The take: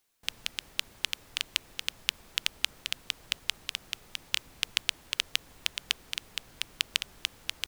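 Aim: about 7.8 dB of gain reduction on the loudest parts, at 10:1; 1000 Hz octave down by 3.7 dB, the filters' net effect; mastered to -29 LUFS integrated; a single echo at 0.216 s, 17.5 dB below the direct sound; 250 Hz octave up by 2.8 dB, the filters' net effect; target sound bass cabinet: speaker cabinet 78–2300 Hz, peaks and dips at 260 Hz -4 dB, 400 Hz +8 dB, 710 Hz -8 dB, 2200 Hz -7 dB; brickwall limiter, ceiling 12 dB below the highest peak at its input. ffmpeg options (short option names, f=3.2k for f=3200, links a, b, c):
-af "equalizer=f=250:t=o:g=4.5,equalizer=f=1k:t=o:g=-3.5,acompressor=threshold=-32dB:ratio=10,alimiter=limit=-21dB:level=0:latency=1,highpass=f=78:w=0.5412,highpass=f=78:w=1.3066,equalizer=f=260:t=q:w=4:g=-4,equalizer=f=400:t=q:w=4:g=8,equalizer=f=710:t=q:w=4:g=-8,equalizer=f=2.2k:t=q:w=4:g=-7,lowpass=f=2.3k:w=0.5412,lowpass=f=2.3k:w=1.3066,aecho=1:1:216:0.133,volume=30dB"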